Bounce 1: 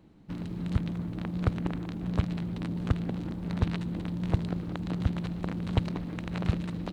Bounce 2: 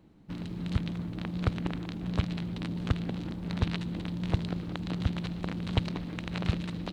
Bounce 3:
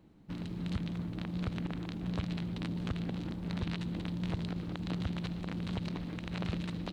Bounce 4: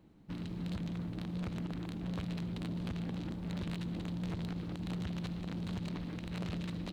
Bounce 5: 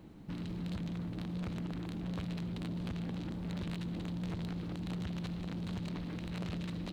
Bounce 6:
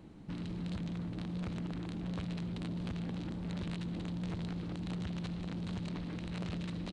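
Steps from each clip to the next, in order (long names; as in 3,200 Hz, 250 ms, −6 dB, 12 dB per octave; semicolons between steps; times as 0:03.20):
dynamic equaliser 3,700 Hz, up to +7 dB, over −58 dBFS, Q 0.72; level −1.5 dB
brickwall limiter −22 dBFS, peak gain reduction 11.5 dB; level −2 dB
hard clipping −32.5 dBFS, distortion −13 dB; level −1 dB
brickwall limiter −42.5 dBFS, peak gain reduction 9 dB; level +8.5 dB
downsampling to 22,050 Hz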